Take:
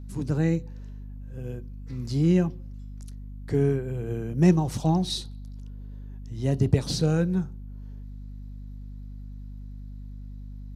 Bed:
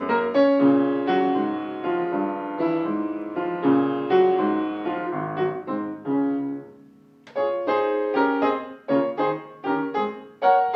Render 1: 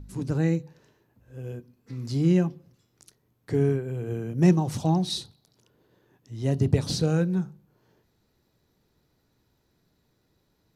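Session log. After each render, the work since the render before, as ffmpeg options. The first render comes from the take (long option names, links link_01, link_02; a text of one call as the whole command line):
ffmpeg -i in.wav -af "bandreject=frequency=50:width_type=h:width=4,bandreject=frequency=100:width_type=h:width=4,bandreject=frequency=150:width_type=h:width=4,bandreject=frequency=200:width_type=h:width=4,bandreject=frequency=250:width_type=h:width=4" out.wav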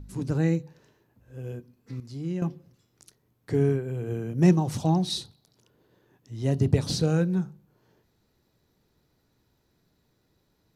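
ffmpeg -i in.wav -filter_complex "[0:a]asplit=3[link_01][link_02][link_03];[link_01]atrim=end=2.002[link_04];[link_02]atrim=start=1.998:end=2.422,asetpts=PTS-STARTPTS,volume=-10.5dB[link_05];[link_03]atrim=start=2.418[link_06];[link_04][link_05]acrossfade=duration=0.004:curve1=hsin:curve2=hsin[link_07];[link_07][link_06]acrossfade=duration=0.004:curve1=hsin:curve2=hsin" out.wav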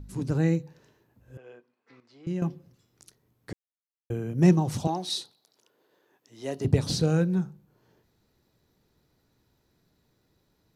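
ffmpeg -i in.wav -filter_complex "[0:a]asettb=1/sr,asplit=3[link_01][link_02][link_03];[link_01]atrim=end=1.374[link_04];[link_02]atrim=start=1.37:end=2.27,asetpts=PTS-STARTPTS,afade=type=in:duration=0.004:curve=qsin,afade=type=out:start_time=0.896:duration=0.004:curve=qsin,highpass=670,lowpass=2700[link_05];[link_03]atrim=start=2.266[link_06];[link_04][link_05]acrossfade=duration=0.004:curve1=hsin:curve2=qsin[link_07];[link_07][link_06]acrossfade=duration=0.004:curve1=qsin:curve2=hsin,asettb=1/sr,asplit=3[link_08][link_09][link_10];[link_08]atrim=end=4.874[link_11];[link_09]atrim=start=4.87:end=6.65,asetpts=PTS-STARTPTS,afade=type=in:duration=0.004:curve=qsin,afade=type=out:start_time=1.776:duration=0.004:curve=qsin,highpass=400[link_12];[link_10]atrim=start=6.646[link_13];[link_11][link_12]acrossfade=duration=0.004:curve1=hsin:curve2=qsin[link_14];[link_14][link_13]acrossfade=duration=0.004:curve1=qsin:curve2=hsin,asplit=3[link_15][link_16][link_17];[link_15]atrim=end=3.53,asetpts=PTS-STARTPTS,afade=type=out:start_time=3.526:duration=0.004:curve=hsin[link_18];[link_16]atrim=start=3.53:end=4.1,asetpts=PTS-STARTPTS,volume=0[link_19];[link_17]atrim=start=4.1,asetpts=PTS-STARTPTS,afade=type=in:duration=0.004:curve=hsin[link_20];[link_18][link_19][link_20]concat=n=3:v=0:a=1" out.wav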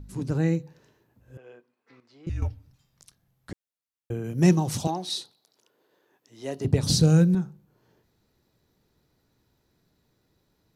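ffmpeg -i in.wav -filter_complex "[0:a]asettb=1/sr,asplit=3[link_01][link_02][link_03];[link_01]atrim=end=2.294[link_04];[link_02]atrim=start=2.29:end=3.51,asetpts=PTS-STARTPTS,afade=type=in:duration=0.004:curve=qsin,afade=type=out:start_time=1.216:duration=0.004:curve=qsin,afreqshift=-250[link_05];[link_03]atrim=start=3.506[link_06];[link_04][link_05]acrossfade=duration=0.004:curve1=hsin:curve2=qsin[link_07];[link_07][link_06]acrossfade=duration=0.004:curve1=qsin:curve2=hsin,asettb=1/sr,asplit=3[link_08][link_09][link_10];[link_08]atrim=end=4.244[link_11];[link_09]atrim=start=4.24:end=4.91,asetpts=PTS-STARTPTS,afade=type=in:duration=0.004:curve=qsin,afade=type=out:start_time=0.666:duration=0.004:curve=qsin,highshelf=frequency=2700:gain=8[link_12];[link_10]atrim=start=4.906[link_13];[link_11][link_12]acrossfade=duration=0.004:curve1=hsin:curve2=qsin[link_14];[link_14][link_13]acrossfade=duration=0.004:curve1=qsin:curve2=hsin,asettb=1/sr,asplit=3[link_15][link_16][link_17];[link_15]atrim=end=6.834[link_18];[link_16]atrim=start=6.83:end=7.35,asetpts=PTS-STARTPTS,afade=type=in:duration=0.004:curve=qsin,afade=type=out:start_time=0.516:duration=0.004:curve=qsin,bass=frequency=250:gain=8,treble=frequency=4000:gain=9[link_19];[link_17]atrim=start=7.346[link_20];[link_18][link_19]acrossfade=duration=0.004:curve1=hsin:curve2=qsin[link_21];[link_21][link_20]acrossfade=duration=0.004:curve1=qsin:curve2=hsin" out.wav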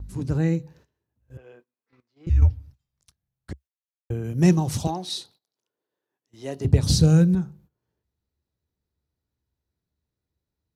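ffmpeg -i in.wav -af "agate=range=-18dB:threshold=-53dB:ratio=16:detection=peak,equalizer=frequency=68:width=1.5:gain=14.5" out.wav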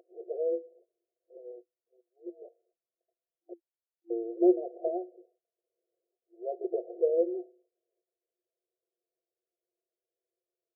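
ffmpeg -i in.wav -af "afftfilt=real='re*between(b*sr/4096,340,750)':imag='im*between(b*sr/4096,340,750)':win_size=4096:overlap=0.75,aecho=1:1:6:0.66" out.wav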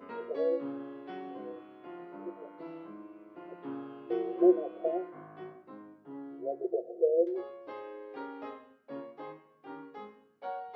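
ffmpeg -i in.wav -i bed.wav -filter_complex "[1:a]volume=-21.5dB[link_01];[0:a][link_01]amix=inputs=2:normalize=0" out.wav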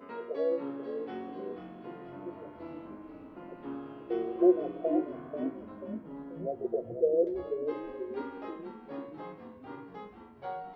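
ffmpeg -i in.wav -filter_complex "[0:a]asplit=8[link_01][link_02][link_03][link_04][link_05][link_06][link_07][link_08];[link_02]adelay=487,afreqshift=-48,volume=-8dB[link_09];[link_03]adelay=974,afreqshift=-96,volume=-13dB[link_10];[link_04]adelay=1461,afreqshift=-144,volume=-18.1dB[link_11];[link_05]adelay=1948,afreqshift=-192,volume=-23.1dB[link_12];[link_06]adelay=2435,afreqshift=-240,volume=-28.1dB[link_13];[link_07]adelay=2922,afreqshift=-288,volume=-33.2dB[link_14];[link_08]adelay=3409,afreqshift=-336,volume=-38.2dB[link_15];[link_01][link_09][link_10][link_11][link_12][link_13][link_14][link_15]amix=inputs=8:normalize=0" out.wav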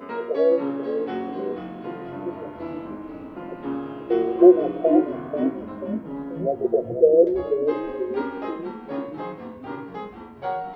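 ffmpeg -i in.wav -af "volume=11dB,alimiter=limit=-3dB:level=0:latency=1" out.wav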